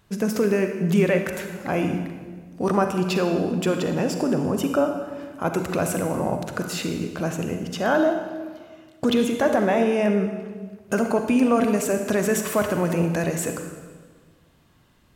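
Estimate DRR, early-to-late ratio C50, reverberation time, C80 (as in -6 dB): 5.0 dB, 6.0 dB, 1.5 s, 7.5 dB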